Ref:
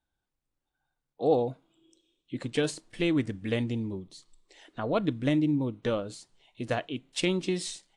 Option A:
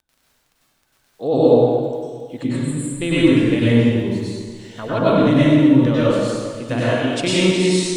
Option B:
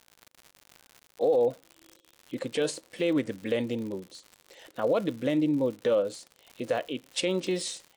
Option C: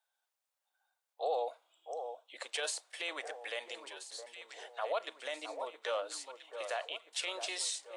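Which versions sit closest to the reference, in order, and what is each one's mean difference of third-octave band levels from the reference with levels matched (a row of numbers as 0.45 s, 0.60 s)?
B, A, C; 5.0 dB, 10.5 dB, 14.5 dB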